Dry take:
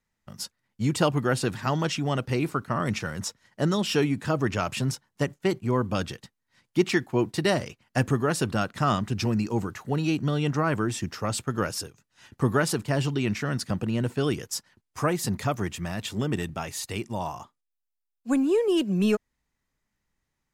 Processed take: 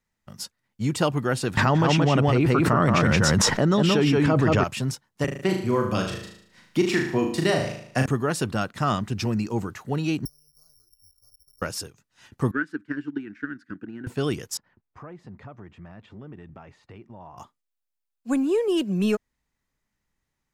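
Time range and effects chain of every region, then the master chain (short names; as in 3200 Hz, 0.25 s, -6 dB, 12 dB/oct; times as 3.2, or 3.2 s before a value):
1.57–4.64 LPF 2400 Hz 6 dB/oct + echo 0.175 s -3.5 dB + fast leveller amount 100%
5.24–8.06 notch 860 Hz, Q 16 + flutter echo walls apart 6.4 m, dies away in 0.56 s + three-band squash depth 40%
10.25–11.62 inverse Chebyshev band-stop 110–4500 Hz, stop band 50 dB + low shelf 470 Hz +5.5 dB + careless resampling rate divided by 8×, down filtered, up zero stuff
12.51–14.07 double band-pass 680 Hz, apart 2.4 oct + transient shaper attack +8 dB, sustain -4 dB
14.57–17.38 compressor 3:1, threshold -43 dBFS + LPF 1700 Hz
whole clip: dry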